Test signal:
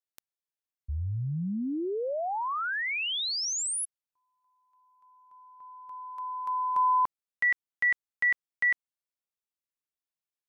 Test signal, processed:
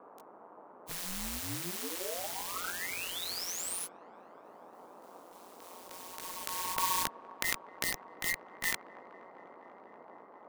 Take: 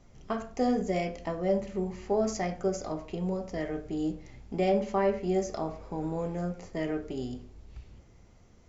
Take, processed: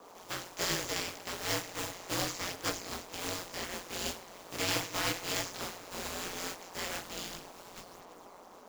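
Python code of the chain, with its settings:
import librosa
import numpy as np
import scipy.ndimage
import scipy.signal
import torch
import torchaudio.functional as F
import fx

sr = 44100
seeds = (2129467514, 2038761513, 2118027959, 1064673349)

p1 = fx.spec_flatten(x, sr, power=0.24)
p2 = scipy.signal.sosfilt(scipy.signal.butter(2, 81.0, 'highpass', fs=sr, output='sos'), p1)
p3 = fx.notch(p2, sr, hz=810.0, q=12.0)
p4 = fx.chorus_voices(p3, sr, voices=4, hz=1.4, base_ms=17, depth_ms=3.0, mix_pct=50)
p5 = fx.dmg_noise_band(p4, sr, seeds[0], low_hz=300.0, high_hz=1100.0, level_db=-51.0)
p6 = p5 + fx.echo_wet_bandpass(p5, sr, ms=243, feedback_pct=82, hz=710.0, wet_db=-17.0, dry=0)
y = p6 * np.sin(2.0 * np.pi * 89.0 * np.arange(len(p6)) / sr)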